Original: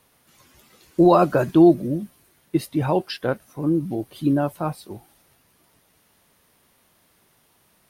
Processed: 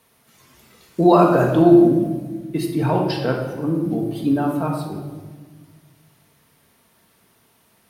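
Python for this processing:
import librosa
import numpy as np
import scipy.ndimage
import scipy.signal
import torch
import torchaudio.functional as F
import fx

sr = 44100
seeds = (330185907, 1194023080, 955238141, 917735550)

y = scipy.signal.sosfilt(scipy.signal.butter(2, 51.0, 'highpass', fs=sr, output='sos'), x)
y = fx.room_shoebox(y, sr, seeds[0], volume_m3=1200.0, walls='mixed', distance_m=1.6)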